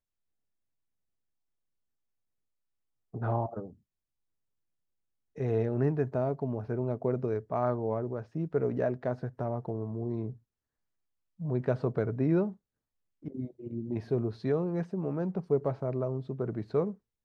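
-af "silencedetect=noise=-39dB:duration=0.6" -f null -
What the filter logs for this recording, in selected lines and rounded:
silence_start: 0.00
silence_end: 3.14 | silence_duration: 3.14
silence_start: 3.68
silence_end: 5.38 | silence_duration: 1.70
silence_start: 10.32
silence_end: 11.40 | silence_duration: 1.09
silence_start: 12.52
silence_end: 13.25 | silence_duration: 0.72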